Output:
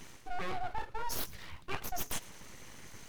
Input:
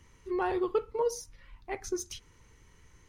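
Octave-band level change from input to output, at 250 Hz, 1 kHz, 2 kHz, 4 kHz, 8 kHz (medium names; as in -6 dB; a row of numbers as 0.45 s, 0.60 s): -12.5 dB, -2.0 dB, +0.5 dB, +3.0 dB, -1.0 dB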